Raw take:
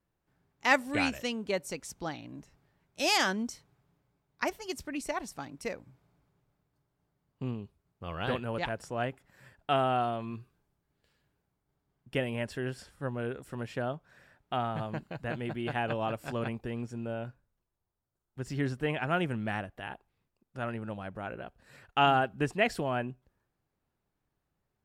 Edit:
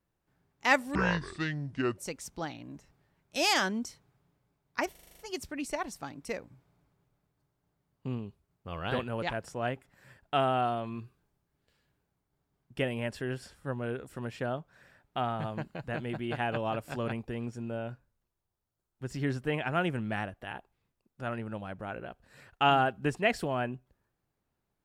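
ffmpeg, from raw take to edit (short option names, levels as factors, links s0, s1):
-filter_complex "[0:a]asplit=10[s0][s1][s2][s3][s4][s5][s6][s7][s8][s9];[s0]atrim=end=0.954[s10];[s1]atrim=start=0.95:end=1.62,asetpts=PTS-STARTPTS,asetrate=28665,aresample=44100[s11];[s2]atrim=start=1.616:end=4.592[s12];[s3]atrim=start=4.548:end=4.592[s13];[s4]atrim=start=4.548:end=4.592[s14];[s5]atrim=start=4.548:end=4.592[s15];[s6]atrim=start=4.548:end=4.592[s16];[s7]atrim=start=4.548:end=4.592[s17];[s8]atrim=start=4.548:end=4.592[s18];[s9]atrim=start=4.548[s19];[s10][s11]acrossfade=d=0.004:c1=hsin:c2=hsin[s20];[s20][s12]acrossfade=d=0.004:c1=hsin:c2=hsin[s21];[s21][s13]acrossfade=d=0.004:c1=hsin:c2=hsin[s22];[s22][s14]acrossfade=d=0.004:c1=hsin:c2=hsin[s23];[s23][s15]acrossfade=d=0.004:c1=hsin:c2=hsin[s24];[s24][s16]acrossfade=d=0.004:c1=hsin:c2=hsin[s25];[s25][s17]acrossfade=d=0.004:c1=hsin:c2=hsin[s26];[s26][s18]acrossfade=d=0.004:c1=hsin:c2=hsin[s27];[s27][s19]acrossfade=d=0.004:c1=hsin:c2=hsin"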